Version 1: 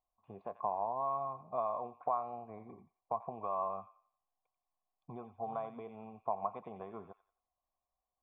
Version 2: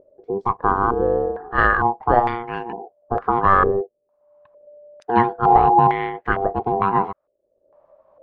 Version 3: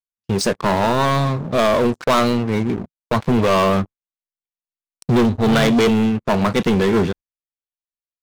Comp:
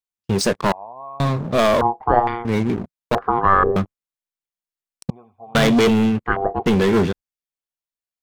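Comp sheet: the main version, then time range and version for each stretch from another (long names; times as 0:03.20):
3
0:00.72–0:01.20: punch in from 1
0:01.81–0:02.45: punch in from 2
0:03.15–0:03.76: punch in from 2
0:05.10–0:05.55: punch in from 1
0:06.26–0:06.66: punch in from 2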